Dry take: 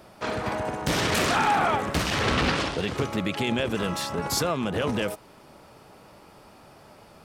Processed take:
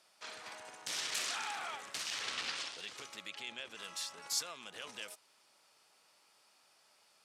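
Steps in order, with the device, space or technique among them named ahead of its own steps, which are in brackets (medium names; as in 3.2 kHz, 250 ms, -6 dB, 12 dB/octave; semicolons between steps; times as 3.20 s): piezo pickup straight into a mixer (low-pass 7.4 kHz 12 dB/octave; differentiator); 3.30–3.79 s: treble shelf 6.3 kHz -10 dB; trim -3 dB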